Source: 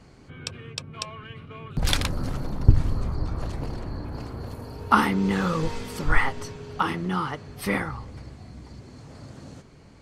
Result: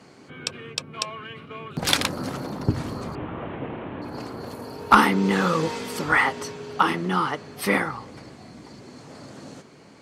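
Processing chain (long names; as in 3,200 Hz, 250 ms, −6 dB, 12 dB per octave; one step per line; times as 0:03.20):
0:03.15–0:04.02: linear delta modulator 16 kbit/s, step −44.5 dBFS
high-pass filter 210 Hz 12 dB per octave
asymmetric clip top −11.5 dBFS
level +5 dB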